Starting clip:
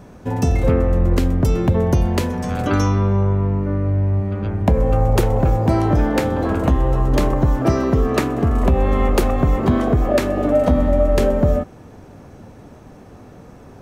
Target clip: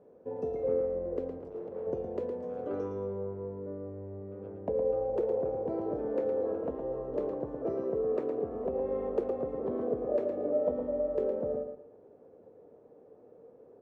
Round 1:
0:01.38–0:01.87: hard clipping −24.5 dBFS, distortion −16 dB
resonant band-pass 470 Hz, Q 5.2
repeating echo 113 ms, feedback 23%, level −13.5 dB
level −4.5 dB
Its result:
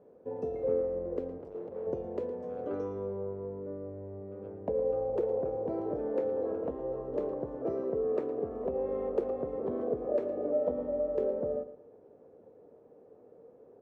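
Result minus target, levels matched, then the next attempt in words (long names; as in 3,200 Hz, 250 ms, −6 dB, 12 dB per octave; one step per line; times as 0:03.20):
echo-to-direct −6.5 dB
0:01.38–0:01.87: hard clipping −24.5 dBFS, distortion −16 dB
resonant band-pass 470 Hz, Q 5.2
repeating echo 113 ms, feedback 23%, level −7 dB
level −4.5 dB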